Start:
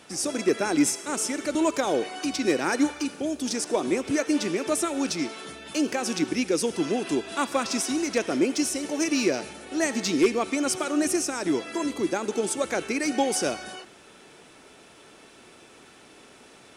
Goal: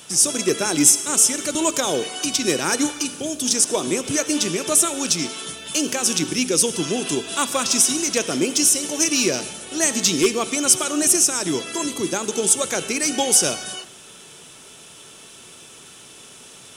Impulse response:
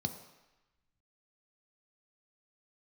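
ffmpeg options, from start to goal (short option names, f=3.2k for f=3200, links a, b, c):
-filter_complex "[0:a]aexciter=amount=2.8:drive=5.1:freq=2.8k,asplit=2[a][b];[1:a]atrim=start_sample=2205[c];[b][c]afir=irnorm=-1:irlink=0,volume=-15.5dB[d];[a][d]amix=inputs=2:normalize=0,volume=3.5dB"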